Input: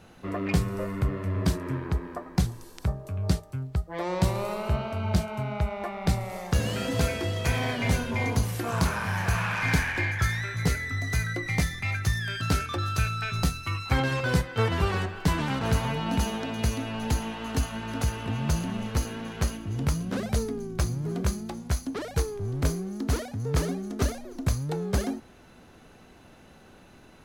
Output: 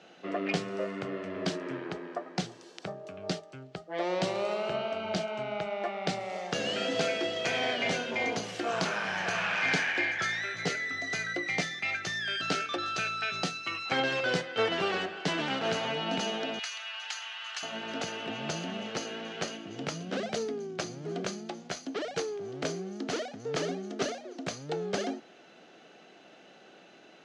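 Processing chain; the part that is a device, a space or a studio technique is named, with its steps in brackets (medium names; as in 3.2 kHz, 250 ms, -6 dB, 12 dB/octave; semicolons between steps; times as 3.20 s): television speaker (cabinet simulation 210–6500 Hz, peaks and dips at 240 Hz -8 dB, 680 Hz +4 dB, 1 kHz -8 dB, 3 kHz +5 dB); 16.59–17.63 s: high-pass 1.1 kHz 24 dB/octave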